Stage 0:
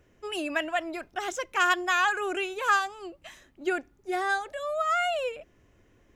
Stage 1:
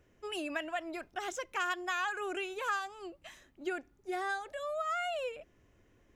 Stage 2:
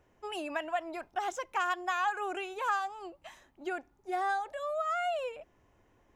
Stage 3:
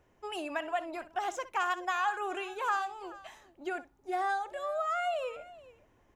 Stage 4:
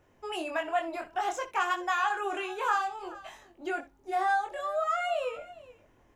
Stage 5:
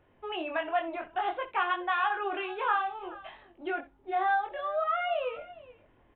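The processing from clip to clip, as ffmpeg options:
ffmpeg -i in.wav -af "acompressor=threshold=-30dB:ratio=2,volume=-4.5dB" out.wav
ffmpeg -i in.wav -af "equalizer=frequency=870:width_type=o:width=0.83:gain=11,volume=-2dB" out.wav
ffmpeg -i in.wav -af "aecho=1:1:63|425:0.168|0.112" out.wav
ffmpeg -i in.wav -af "flanger=delay=20:depth=4.2:speed=0.57,volume=6dB" out.wav
ffmpeg -i in.wav -af "aresample=8000,aresample=44100" out.wav

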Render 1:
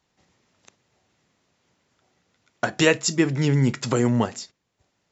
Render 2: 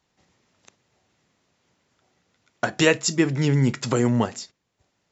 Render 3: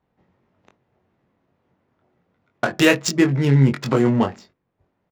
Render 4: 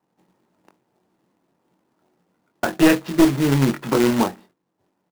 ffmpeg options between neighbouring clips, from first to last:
ffmpeg -i in.wav -af anull out.wav
ffmpeg -i in.wav -filter_complex "[0:a]adynamicsmooth=sensitivity=2.5:basefreq=1500,asplit=2[link_01][link_02];[link_02]adelay=22,volume=-5dB[link_03];[link_01][link_03]amix=inputs=2:normalize=0,volume=2.5dB" out.wav
ffmpeg -i in.wav -af "highpass=170,equalizer=frequency=180:width_type=q:width=4:gain=5,equalizer=frequency=320:width_type=q:width=4:gain=7,equalizer=frequency=890:width_type=q:width=4:gain=5,equalizer=frequency=2200:width_type=q:width=4:gain=-5,lowpass=frequency=2900:width=0.5412,lowpass=frequency=2900:width=1.3066,aeval=exprs='clip(val(0),-1,0.237)':channel_layout=same,acrusher=bits=2:mode=log:mix=0:aa=0.000001,volume=-2dB" out.wav

